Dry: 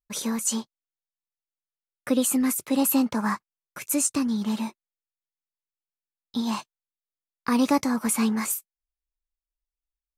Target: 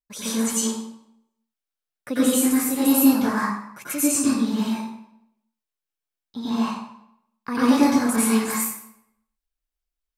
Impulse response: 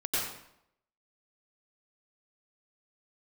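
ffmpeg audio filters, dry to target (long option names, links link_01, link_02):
-filter_complex "[0:a]asettb=1/sr,asplit=3[link_01][link_02][link_03];[link_01]atrim=end=4.644[link_04];[link_02]atrim=start=4.64:end=7.55,asetpts=PTS-STARTPTS,afade=type=in:duration=0.004:curve=qsin,afade=type=out:start_time=2.906:duration=0.004:curve=qsin,acrossover=split=2900[link_05][link_06];[link_06]acompressor=threshold=-44dB:ratio=4:attack=1:release=60[link_07];[link_05][link_07]amix=inputs=2:normalize=0[link_08];[link_03]atrim=start=7.546[link_09];[link_04][link_08]acrossfade=duration=0.004:curve1=hsin:curve2=qsin[link_10];[link_10][link_09]acrossfade=duration=0.004:curve1=qsin:curve2=hsin[link_11];[1:a]atrim=start_sample=2205[link_12];[link_11][link_12]afir=irnorm=-1:irlink=0,volume=-3.5dB"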